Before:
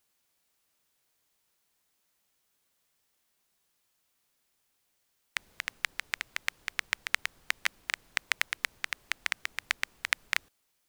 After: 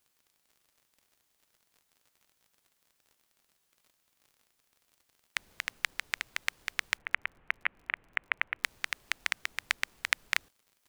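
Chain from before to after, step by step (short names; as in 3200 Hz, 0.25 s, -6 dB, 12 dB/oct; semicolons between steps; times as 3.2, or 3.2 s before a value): 6.97–8.64 steep low-pass 2700 Hz 36 dB/oct; crackle 53/s -50 dBFS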